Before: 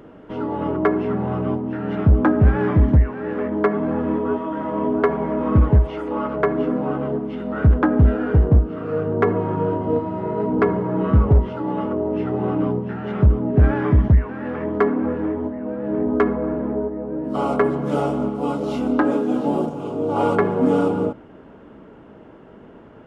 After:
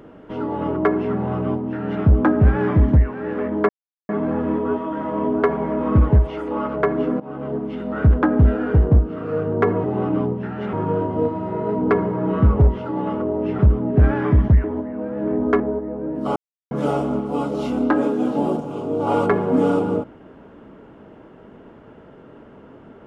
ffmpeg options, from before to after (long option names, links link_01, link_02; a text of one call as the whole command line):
ffmpeg -i in.wav -filter_complex "[0:a]asplit=10[link_01][link_02][link_03][link_04][link_05][link_06][link_07][link_08][link_09][link_10];[link_01]atrim=end=3.69,asetpts=PTS-STARTPTS,afade=type=out:start_time=3.686:duration=0.004:curve=hsin,apad=pad_dur=0.4[link_11];[link_02]atrim=start=3.69:end=6.8,asetpts=PTS-STARTPTS,afade=type=in:duration=0.004:curve=hsin,afade=type=out:start_time=3.106:duration=0.004:curve=hsin:silence=0.133352[link_12];[link_03]atrim=start=6.8:end=9.442,asetpts=PTS-STARTPTS,afade=type=in:duration=0.43:silence=0.133352[link_13];[link_04]atrim=start=12.298:end=13.192[link_14];[link_05]atrim=start=9.438:end=12.302[link_15];[link_06]atrim=start=13.188:end=14.242[link_16];[link_07]atrim=start=15.308:end=16.272[link_17];[link_08]atrim=start=16.688:end=17.45,asetpts=PTS-STARTPTS,afade=type=out:start_time=0.758:duration=0.004:curve=hsin[link_18];[link_09]atrim=start=17.45:end=17.8,asetpts=PTS-STARTPTS,volume=0[link_19];[link_10]atrim=start=17.8,asetpts=PTS-STARTPTS,afade=type=in:duration=0.004:curve=hsin[link_20];[link_11][link_12][link_13]concat=n=3:v=0:a=1[link_21];[link_21][link_14]acrossfade=duration=0.004:curve1=hsin:curve2=hsin[link_22];[link_22][link_15]acrossfade=duration=0.004:curve1=hsin:curve2=hsin[link_23];[link_23][link_16]acrossfade=duration=0.004:curve1=hsin:curve2=hsin[link_24];[link_24][link_17]acrossfade=duration=0.004:curve1=hsin:curve2=hsin[link_25];[link_18][link_19][link_20]concat=n=3:v=0:a=1[link_26];[link_25][link_26]acrossfade=duration=0.004:curve1=hsin:curve2=hsin" out.wav